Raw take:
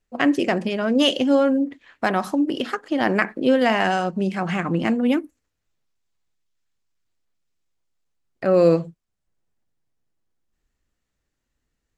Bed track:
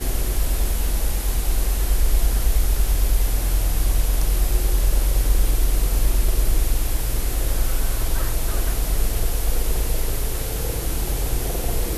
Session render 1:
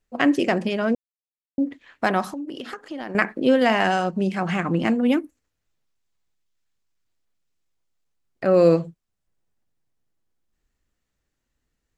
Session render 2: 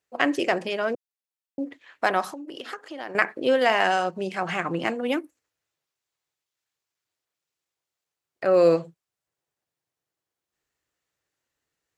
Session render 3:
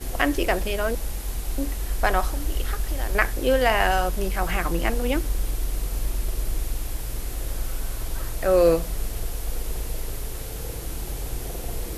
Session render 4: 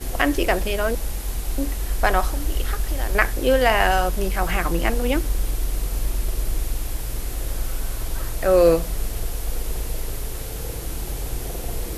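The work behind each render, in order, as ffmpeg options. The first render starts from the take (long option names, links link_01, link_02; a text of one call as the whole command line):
ffmpeg -i in.wav -filter_complex "[0:a]asettb=1/sr,asplit=3[link_01][link_02][link_03];[link_01]atrim=end=2.244[link_04];[link_02]atrim=start=2.24:end=3.15,asetpts=PTS-STARTPTS,afade=type=in:duration=0.004:curve=qsin,afade=type=out:start_time=0.906:duration=0.004:curve=qsin,acompressor=threshold=-31dB:ratio=4:attack=3.2:release=140:knee=1:detection=peak[link_05];[link_03]atrim=start=3.146[link_06];[link_04][link_05]acrossfade=duration=0.004:curve1=hsin:curve2=qsin[link_07];[link_07][link_06]acrossfade=duration=0.004:curve1=qsin:curve2=hsin,asplit=3[link_08][link_09][link_10];[link_08]atrim=end=0.95,asetpts=PTS-STARTPTS,afade=type=out:start_time=0.946:duration=0.004:curve=hsin[link_11];[link_09]atrim=start=0.95:end=1.58,asetpts=PTS-STARTPTS,volume=0[link_12];[link_10]atrim=start=1.58,asetpts=PTS-STARTPTS,afade=type=in:duration=0.004:curve=hsin[link_13];[link_11][link_12][link_13]concat=n=3:v=0:a=1" out.wav
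ffmpeg -i in.wav -af "highpass=160,equalizer=frequency=220:width=1.7:gain=-12.5" out.wav
ffmpeg -i in.wav -i bed.wav -filter_complex "[1:a]volume=-7.5dB[link_01];[0:a][link_01]amix=inputs=2:normalize=0" out.wav
ffmpeg -i in.wav -af "volume=2.5dB,alimiter=limit=-2dB:level=0:latency=1" out.wav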